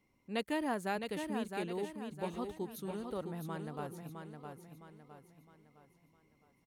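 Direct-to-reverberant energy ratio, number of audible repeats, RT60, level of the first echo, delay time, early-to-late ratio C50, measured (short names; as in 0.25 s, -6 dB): none, 4, none, -6.0 dB, 0.661 s, none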